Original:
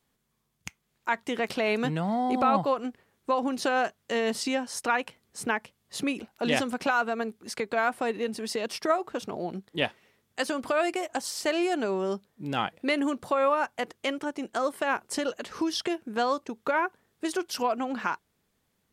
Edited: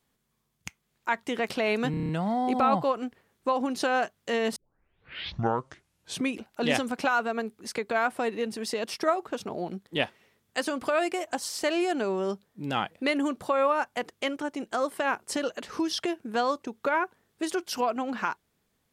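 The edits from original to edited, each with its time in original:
0:01.91: stutter 0.03 s, 7 plays
0:04.38: tape start 1.79 s

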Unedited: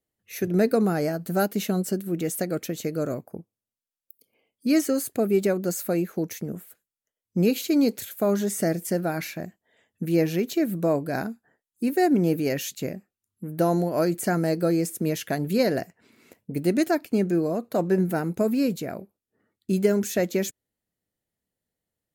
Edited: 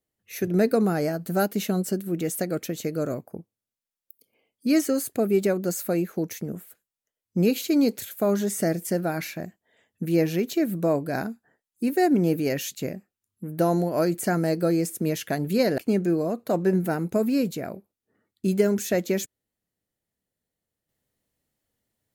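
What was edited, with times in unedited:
0:15.78–0:17.03: remove

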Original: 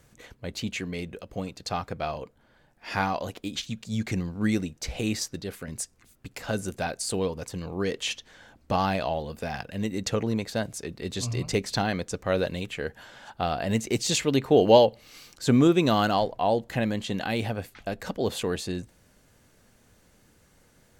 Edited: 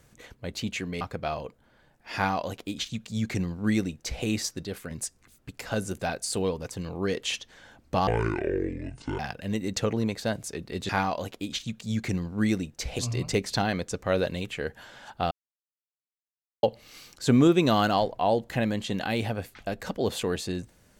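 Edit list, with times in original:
0:01.01–0:01.78: remove
0:02.92–0:05.02: duplicate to 0:11.19
0:08.84–0:09.49: play speed 58%
0:13.51–0:14.83: silence

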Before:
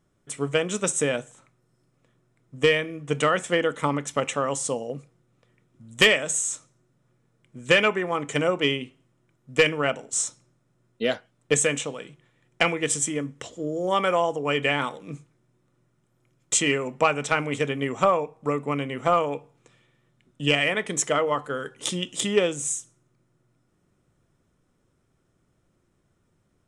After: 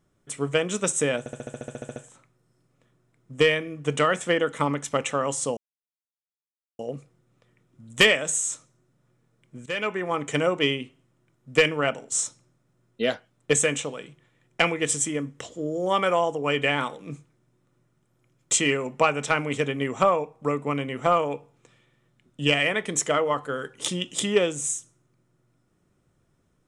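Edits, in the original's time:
0:01.19: stutter 0.07 s, 12 plays
0:04.80: splice in silence 1.22 s
0:07.67–0:08.13: fade in, from −18 dB

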